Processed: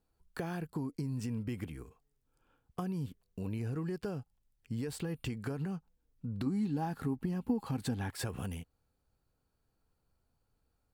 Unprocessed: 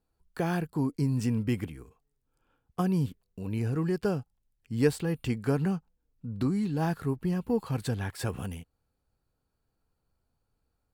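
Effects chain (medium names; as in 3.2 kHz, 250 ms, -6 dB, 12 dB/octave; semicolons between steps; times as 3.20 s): peak limiter -22 dBFS, peak gain reduction 10 dB; compression, threshold -34 dBFS, peak gain reduction 8.5 dB; 6.46–8.11 s: small resonant body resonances 250/810 Hz, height 9 dB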